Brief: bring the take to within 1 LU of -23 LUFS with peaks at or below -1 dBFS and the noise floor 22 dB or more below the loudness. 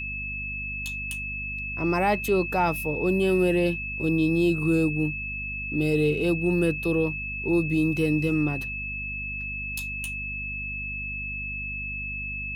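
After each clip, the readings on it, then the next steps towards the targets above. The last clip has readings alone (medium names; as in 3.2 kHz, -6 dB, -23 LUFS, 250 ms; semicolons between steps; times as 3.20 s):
hum 50 Hz; highest harmonic 250 Hz; hum level -36 dBFS; steady tone 2.6 kHz; tone level -31 dBFS; loudness -26.0 LUFS; peak level -11.5 dBFS; loudness target -23.0 LUFS
-> de-hum 50 Hz, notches 5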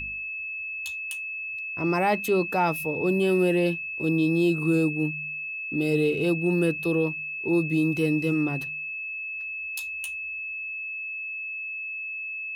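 hum not found; steady tone 2.6 kHz; tone level -31 dBFS
-> band-stop 2.6 kHz, Q 30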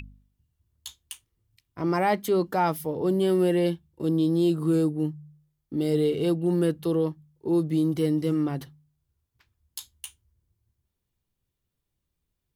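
steady tone not found; loudness -25.5 LUFS; peak level -12.5 dBFS; loudness target -23.0 LUFS
-> trim +2.5 dB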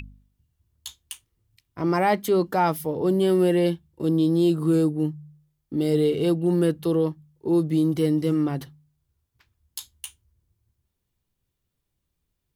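loudness -23.0 LUFS; peak level -10.0 dBFS; noise floor -79 dBFS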